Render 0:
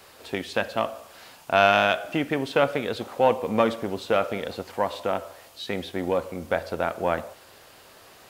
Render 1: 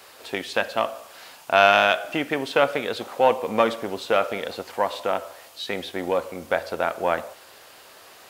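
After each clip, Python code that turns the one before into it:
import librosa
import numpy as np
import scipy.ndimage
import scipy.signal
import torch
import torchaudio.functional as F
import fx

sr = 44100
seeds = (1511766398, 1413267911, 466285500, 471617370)

y = fx.low_shelf(x, sr, hz=250.0, db=-11.5)
y = y * librosa.db_to_amplitude(3.5)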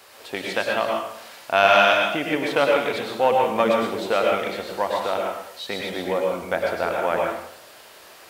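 y = fx.rev_plate(x, sr, seeds[0], rt60_s=0.67, hf_ratio=0.9, predelay_ms=90, drr_db=-0.5)
y = y * librosa.db_to_amplitude(-1.5)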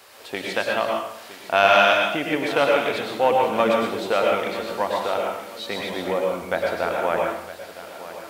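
y = fx.echo_feedback(x, sr, ms=964, feedback_pct=36, wet_db=-14.5)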